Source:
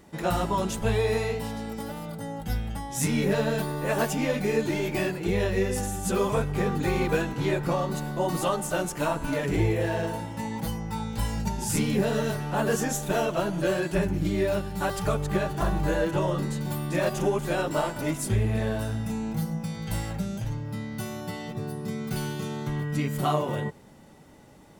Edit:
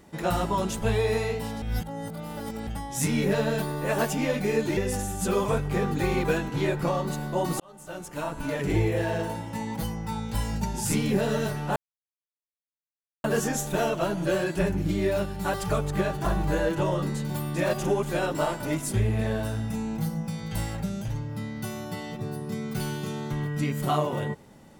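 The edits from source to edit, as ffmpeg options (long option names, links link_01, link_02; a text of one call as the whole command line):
ffmpeg -i in.wav -filter_complex "[0:a]asplit=6[link_01][link_02][link_03][link_04][link_05][link_06];[link_01]atrim=end=1.622[link_07];[link_02]atrim=start=1.618:end=2.672,asetpts=PTS-STARTPTS,areverse[link_08];[link_03]atrim=start=2.668:end=4.772[link_09];[link_04]atrim=start=5.608:end=8.44,asetpts=PTS-STARTPTS,afade=type=out:start_time=2.828:duration=0.004:curve=hsin[link_10];[link_05]atrim=start=8.44:end=12.6,asetpts=PTS-STARTPTS,afade=type=in:duration=1.15,afade=type=out:start_time=4.156:duration=0.004:curve=hsin,apad=pad_dur=1.48[link_11];[link_06]atrim=start=12.6,asetpts=PTS-STARTPTS,afade=type=in:duration=0.004:curve=hsin[link_12];[link_07][link_08]acrossfade=duration=0.004:curve1=hsin:curve2=hsin[link_13];[link_13][link_09]acrossfade=duration=0.004:curve1=hsin:curve2=hsin[link_14];[link_10][link_11][link_12]concat=n=3:v=0:a=1[link_15];[link_14][link_15]acrossfade=duration=0.004:curve1=hsin:curve2=hsin" out.wav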